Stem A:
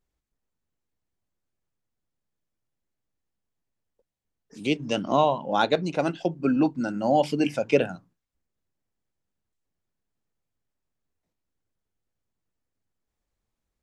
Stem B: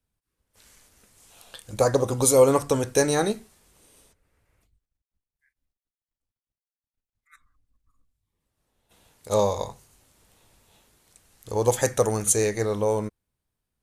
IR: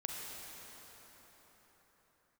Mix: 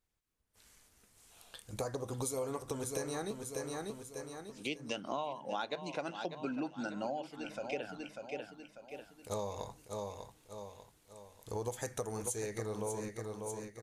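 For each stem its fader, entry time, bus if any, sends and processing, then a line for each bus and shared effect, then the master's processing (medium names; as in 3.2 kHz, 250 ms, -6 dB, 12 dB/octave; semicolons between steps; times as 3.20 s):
-1.0 dB, 0.00 s, no send, echo send -15 dB, bass shelf 440 Hz -10 dB; auto duck -15 dB, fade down 0.20 s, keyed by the second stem
-8.0 dB, 0.00 s, no send, echo send -9 dB, band-stop 550 Hz, Q 12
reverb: none
echo: feedback delay 594 ms, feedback 42%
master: compression 6:1, threshold -35 dBFS, peak gain reduction 14.5 dB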